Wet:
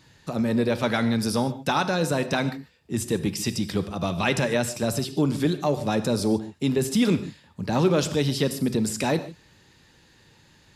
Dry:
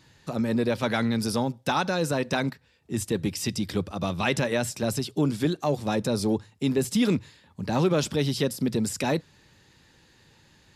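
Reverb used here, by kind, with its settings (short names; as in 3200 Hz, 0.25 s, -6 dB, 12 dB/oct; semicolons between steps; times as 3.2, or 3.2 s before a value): non-linear reverb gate 0.17 s flat, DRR 11 dB; gain +1.5 dB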